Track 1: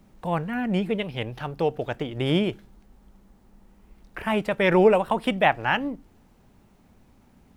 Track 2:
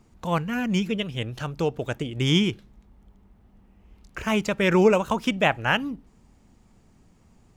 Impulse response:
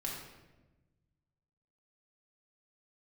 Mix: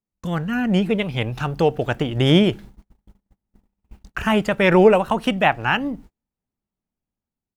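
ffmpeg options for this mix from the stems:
-filter_complex "[0:a]dynaudnorm=framelen=140:gausssize=7:maxgain=6.5dB,volume=-1dB,asplit=2[link_01][link_02];[1:a]adelay=0.5,volume=2dB[link_03];[link_02]apad=whole_len=333717[link_04];[link_03][link_04]sidechaincompress=threshold=-28dB:ratio=8:attack=33:release=282[link_05];[link_01][link_05]amix=inputs=2:normalize=0,agate=range=-37dB:threshold=-40dB:ratio=16:detection=peak,dynaudnorm=framelen=310:gausssize=11:maxgain=4dB"

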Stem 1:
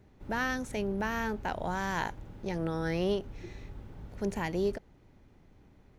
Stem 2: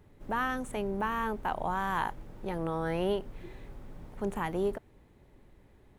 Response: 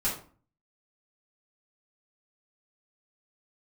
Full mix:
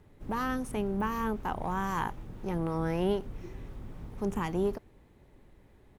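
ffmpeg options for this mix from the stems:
-filter_complex "[0:a]asoftclip=type=tanh:threshold=-25.5dB,acrossover=split=670[link_01][link_02];[link_01]aeval=exprs='val(0)*(1-0.7/2+0.7/2*cos(2*PI*3.9*n/s))':channel_layout=same[link_03];[link_02]aeval=exprs='val(0)*(1-0.7/2-0.7/2*cos(2*PI*3.9*n/s))':channel_layout=same[link_04];[link_03][link_04]amix=inputs=2:normalize=0,volume=-1dB[link_05];[1:a]adelay=0.4,volume=0.5dB,asplit=2[link_06][link_07];[link_07]apad=whole_len=264086[link_08];[link_05][link_08]sidechaingate=range=-33dB:threshold=-47dB:ratio=16:detection=peak[link_09];[link_09][link_06]amix=inputs=2:normalize=0"

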